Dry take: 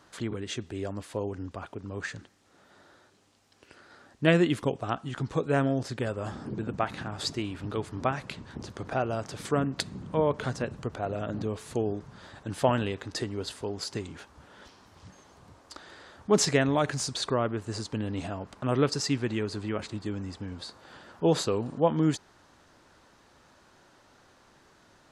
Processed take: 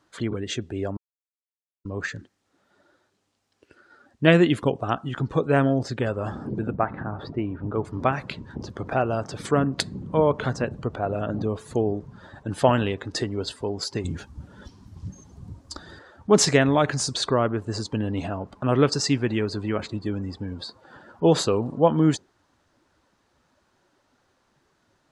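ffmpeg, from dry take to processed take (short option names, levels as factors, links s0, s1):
-filter_complex "[0:a]asettb=1/sr,asplit=3[s0][s1][s2];[s0]atrim=end=6.744[s3];[s1]atrim=start=6.74:end=7.85,asetpts=PTS-STARTPTS,afade=t=in:d=0.004:c=qsin,afade=t=out:st=1.106:d=0.004:c=qsin,lowpass=1600[s4];[s2]atrim=start=7.846[s5];[s3][s4]acrossfade=d=0.004:c1=hsin:c2=qsin[s6];[s6][s5]acrossfade=d=0.004:c1=qsin:c2=hsin,asettb=1/sr,asplit=3[s7][s8][s9];[s7]atrim=end=14.044[s10];[s8]atrim=start=14.04:end=15.99,asetpts=PTS-STARTPTS,afade=t=in:d=0.004:c=qsin,afade=t=out:st=1.946:d=0.004:c=qsin,bass=f=250:g=11,treble=f=4000:g=7[s11];[s9]atrim=start=15.986[s12];[s10][s11]acrossfade=d=0.004:c1=hsin:c2=qsin[s13];[s13][s12]acrossfade=d=0.004:c1=qsin:c2=hsin,asplit=3[s14][s15][s16];[s14]atrim=end=0.97,asetpts=PTS-STARTPTS,afade=t=out:st=0.966:d=0.004:c=hsin[s17];[s15]atrim=start=0.97:end=1.85,asetpts=PTS-STARTPTS,volume=0[s18];[s16]atrim=start=1.85,asetpts=PTS-STARTPTS,afade=t=in:d=0.004:c=hsin[s19];[s17][s18][s19]concat=n=3:v=0:a=1,afftdn=nr=14:nf=-47,volume=1.88"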